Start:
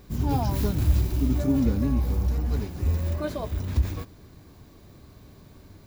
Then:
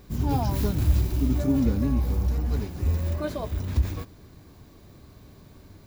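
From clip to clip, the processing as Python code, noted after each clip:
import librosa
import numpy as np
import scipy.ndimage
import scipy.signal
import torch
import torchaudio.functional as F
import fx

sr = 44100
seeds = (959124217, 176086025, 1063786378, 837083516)

y = x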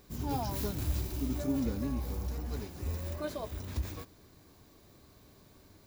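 y = fx.bass_treble(x, sr, bass_db=-6, treble_db=4)
y = y * 10.0 ** (-6.0 / 20.0)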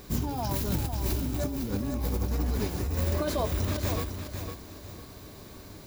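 y = fx.over_compress(x, sr, threshold_db=-38.0, ratio=-1.0)
y = fx.echo_feedback(y, sr, ms=505, feedback_pct=29, wet_db=-7.5)
y = y * 10.0 ** (8.5 / 20.0)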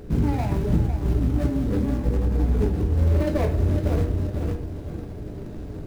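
y = scipy.signal.medfilt(x, 41)
y = fx.rider(y, sr, range_db=4, speed_s=0.5)
y = fx.room_shoebox(y, sr, seeds[0], volume_m3=34.0, walls='mixed', distance_m=0.38)
y = y * 10.0 ** (6.0 / 20.0)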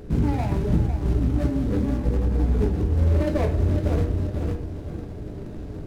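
y = np.interp(np.arange(len(x)), np.arange(len(x))[::2], x[::2])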